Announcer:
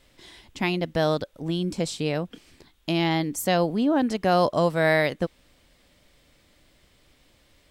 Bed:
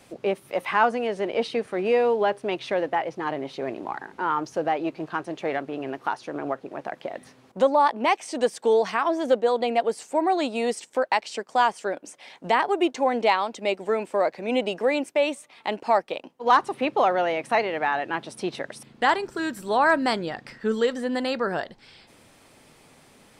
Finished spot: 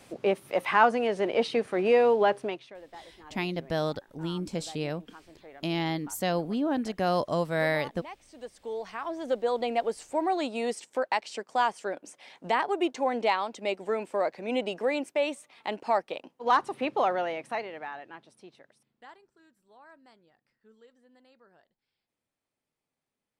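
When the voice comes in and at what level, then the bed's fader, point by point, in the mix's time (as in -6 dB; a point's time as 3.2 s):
2.75 s, -6.0 dB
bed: 2.42 s -0.5 dB
2.74 s -22 dB
8.24 s -22 dB
9.54 s -5 dB
17.11 s -5 dB
19.5 s -34.5 dB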